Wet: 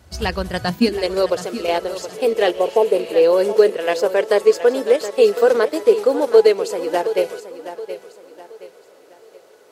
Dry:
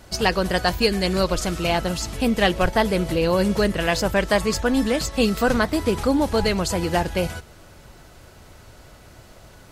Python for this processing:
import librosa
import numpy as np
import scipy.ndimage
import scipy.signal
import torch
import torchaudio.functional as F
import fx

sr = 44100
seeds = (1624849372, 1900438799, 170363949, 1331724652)

p1 = fx.spec_repair(x, sr, seeds[0], start_s=2.57, length_s=0.55, low_hz=1100.0, high_hz=6100.0, source='both')
p2 = fx.level_steps(p1, sr, step_db=21)
p3 = p1 + (p2 * librosa.db_to_amplitude(-0.5))
p4 = fx.filter_sweep_highpass(p3, sr, from_hz=70.0, to_hz=440.0, start_s=0.48, end_s=1.01, q=6.1)
p5 = p4 + fx.echo_feedback(p4, sr, ms=722, feedback_pct=36, wet_db=-12.5, dry=0)
y = p5 * librosa.db_to_amplitude(-7.0)